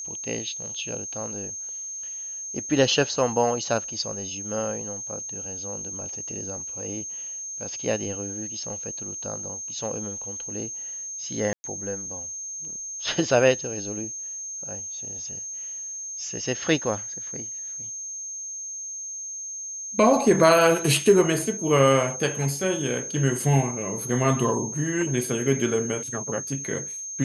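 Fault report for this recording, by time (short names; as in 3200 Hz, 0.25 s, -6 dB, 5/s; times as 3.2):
tone 6400 Hz -32 dBFS
11.53–11.64 gap 0.11 s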